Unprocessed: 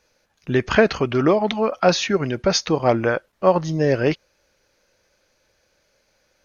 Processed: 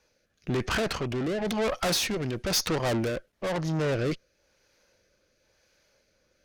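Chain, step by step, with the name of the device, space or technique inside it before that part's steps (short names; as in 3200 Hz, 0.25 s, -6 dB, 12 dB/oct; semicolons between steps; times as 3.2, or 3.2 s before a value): overdriven rotary cabinet (tube stage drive 28 dB, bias 0.75; rotary speaker horn 1 Hz); 1.45–3.08 high shelf 4300 Hz +6.5 dB; gain +4 dB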